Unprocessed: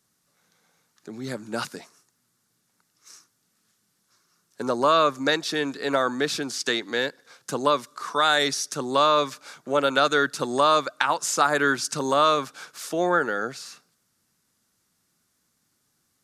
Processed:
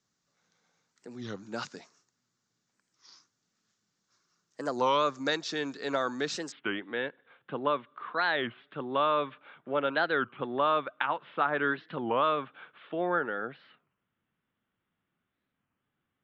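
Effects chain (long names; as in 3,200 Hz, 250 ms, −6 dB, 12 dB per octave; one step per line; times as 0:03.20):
Butterworth low-pass 7,400 Hz 72 dB per octave, from 0:06.53 3,400 Hz
wow of a warped record 33 1/3 rpm, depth 250 cents
level −7 dB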